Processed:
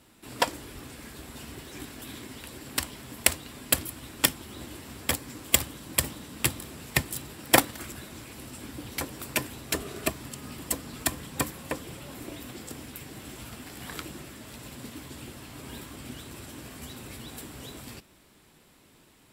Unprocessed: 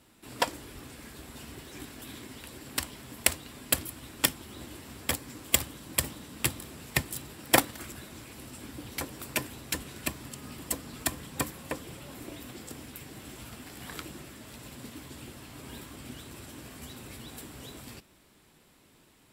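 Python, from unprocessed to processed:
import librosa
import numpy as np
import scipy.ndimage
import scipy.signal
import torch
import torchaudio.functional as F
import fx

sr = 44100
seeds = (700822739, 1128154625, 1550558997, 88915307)

y = fx.small_body(x, sr, hz=(410.0, 650.0, 1200.0), ring_ms=45, db=12, at=(9.7, 10.1))
y = y * 10.0 ** (2.5 / 20.0)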